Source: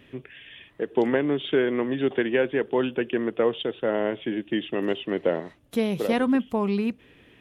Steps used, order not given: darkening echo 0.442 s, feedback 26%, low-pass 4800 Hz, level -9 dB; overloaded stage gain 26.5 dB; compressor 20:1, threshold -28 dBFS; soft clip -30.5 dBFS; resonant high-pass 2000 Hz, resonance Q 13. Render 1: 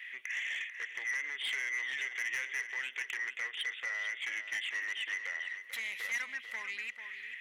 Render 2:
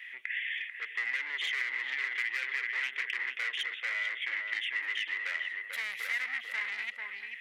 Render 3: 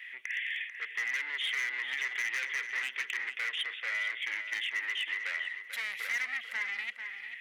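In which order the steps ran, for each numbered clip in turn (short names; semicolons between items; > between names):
compressor > overloaded stage > resonant high-pass > soft clip > darkening echo; darkening echo > soft clip > overloaded stage > resonant high-pass > compressor; soft clip > resonant high-pass > overloaded stage > darkening echo > compressor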